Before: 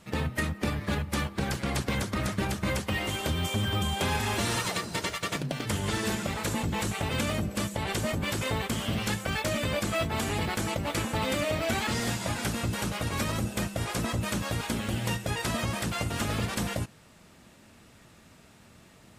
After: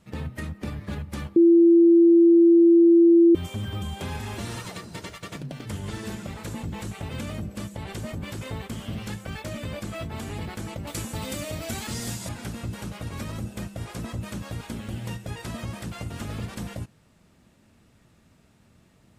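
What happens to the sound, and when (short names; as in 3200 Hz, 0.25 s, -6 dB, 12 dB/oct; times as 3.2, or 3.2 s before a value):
1.36–3.35 bleep 338 Hz -7 dBFS
10.87–12.29 tone controls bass +1 dB, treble +11 dB
whole clip: low shelf 370 Hz +7.5 dB; gain -8.5 dB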